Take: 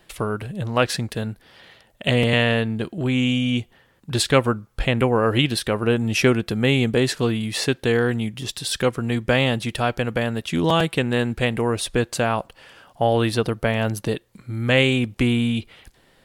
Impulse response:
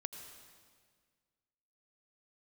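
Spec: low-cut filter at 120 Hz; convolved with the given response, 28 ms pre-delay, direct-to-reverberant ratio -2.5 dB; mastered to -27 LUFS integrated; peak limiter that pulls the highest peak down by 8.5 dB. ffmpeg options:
-filter_complex "[0:a]highpass=120,alimiter=limit=-9.5dB:level=0:latency=1,asplit=2[a][b];[1:a]atrim=start_sample=2205,adelay=28[c];[b][c]afir=irnorm=-1:irlink=0,volume=4.5dB[d];[a][d]amix=inputs=2:normalize=0,volume=-7.5dB"

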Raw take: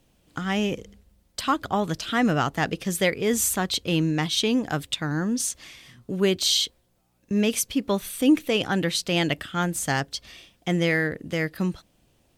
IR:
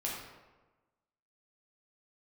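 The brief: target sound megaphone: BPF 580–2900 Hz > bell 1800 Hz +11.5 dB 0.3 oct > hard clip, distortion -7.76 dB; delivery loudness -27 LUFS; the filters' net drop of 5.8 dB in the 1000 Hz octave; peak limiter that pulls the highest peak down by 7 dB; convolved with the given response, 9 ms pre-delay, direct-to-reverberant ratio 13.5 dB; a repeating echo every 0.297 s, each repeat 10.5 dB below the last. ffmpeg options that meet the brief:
-filter_complex "[0:a]equalizer=f=1k:t=o:g=-8,alimiter=limit=-17.5dB:level=0:latency=1,aecho=1:1:297|594|891:0.299|0.0896|0.0269,asplit=2[a][b];[1:a]atrim=start_sample=2205,adelay=9[c];[b][c]afir=irnorm=-1:irlink=0,volume=-17dB[d];[a][d]amix=inputs=2:normalize=0,highpass=580,lowpass=2.9k,equalizer=f=1.8k:t=o:w=0.3:g=11.5,asoftclip=type=hard:threshold=-27dB,volume=6.5dB"

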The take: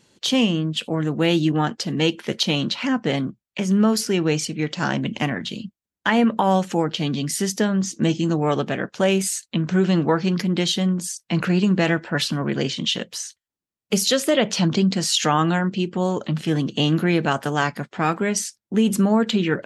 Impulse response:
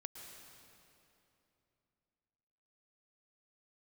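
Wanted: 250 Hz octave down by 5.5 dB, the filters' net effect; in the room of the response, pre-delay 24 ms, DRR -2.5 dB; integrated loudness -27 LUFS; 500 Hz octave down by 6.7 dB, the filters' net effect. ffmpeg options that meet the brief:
-filter_complex "[0:a]equalizer=f=250:t=o:g=-6.5,equalizer=f=500:t=o:g=-6.5,asplit=2[a][b];[1:a]atrim=start_sample=2205,adelay=24[c];[b][c]afir=irnorm=-1:irlink=0,volume=6.5dB[d];[a][d]amix=inputs=2:normalize=0,volume=-6.5dB"

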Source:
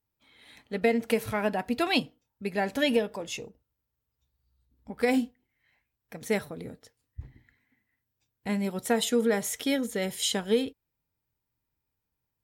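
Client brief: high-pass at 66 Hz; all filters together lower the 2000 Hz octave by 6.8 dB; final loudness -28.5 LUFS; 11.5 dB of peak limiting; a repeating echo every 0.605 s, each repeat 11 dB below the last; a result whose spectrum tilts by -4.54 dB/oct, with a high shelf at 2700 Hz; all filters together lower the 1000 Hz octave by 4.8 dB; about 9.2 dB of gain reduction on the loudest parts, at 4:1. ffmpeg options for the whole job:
-af "highpass=66,equalizer=f=1k:t=o:g=-6,equalizer=f=2k:t=o:g=-4.5,highshelf=f=2.7k:g=-5,acompressor=threshold=-32dB:ratio=4,alimiter=level_in=8.5dB:limit=-24dB:level=0:latency=1,volume=-8.5dB,aecho=1:1:605|1210|1815:0.282|0.0789|0.0221,volume=14dB"

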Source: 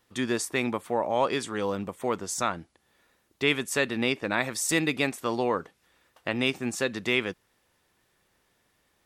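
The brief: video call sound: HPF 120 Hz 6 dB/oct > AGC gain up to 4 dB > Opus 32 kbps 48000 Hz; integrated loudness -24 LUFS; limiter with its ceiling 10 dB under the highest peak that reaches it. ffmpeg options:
-af "alimiter=limit=-19.5dB:level=0:latency=1,highpass=f=120:p=1,dynaudnorm=m=4dB,volume=9dB" -ar 48000 -c:a libopus -b:a 32k

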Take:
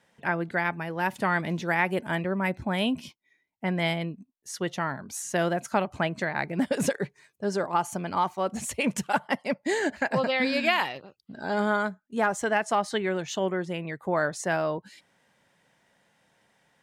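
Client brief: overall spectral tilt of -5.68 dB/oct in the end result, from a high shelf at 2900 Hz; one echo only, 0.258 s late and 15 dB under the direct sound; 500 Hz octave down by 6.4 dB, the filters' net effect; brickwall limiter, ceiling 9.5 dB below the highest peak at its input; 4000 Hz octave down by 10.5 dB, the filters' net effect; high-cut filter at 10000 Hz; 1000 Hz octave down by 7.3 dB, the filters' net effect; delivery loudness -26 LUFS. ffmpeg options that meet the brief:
-af "lowpass=10k,equalizer=f=500:t=o:g=-6,equalizer=f=1k:t=o:g=-6,highshelf=f=2.9k:g=-8,equalizer=f=4k:t=o:g=-8.5,alimiter=level_in=1dB:limit=-24dB:level=0:latency=1,volume=-1dB,aecho=1:1:258:0.178,volume=10dB"

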